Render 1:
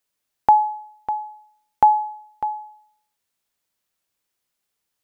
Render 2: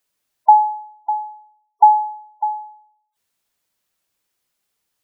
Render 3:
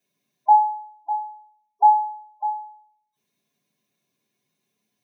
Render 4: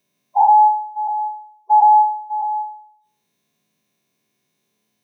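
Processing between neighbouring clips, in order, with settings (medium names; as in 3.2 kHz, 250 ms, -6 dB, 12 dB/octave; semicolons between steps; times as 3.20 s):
spectral gate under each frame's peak -15 dB strong; trim +4 dB
reverberation RT60 0.30 s, pre-delay 3 ms, DRR -3.5 dB; trim -8 dB
every event in the spectrogram widened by 240 ms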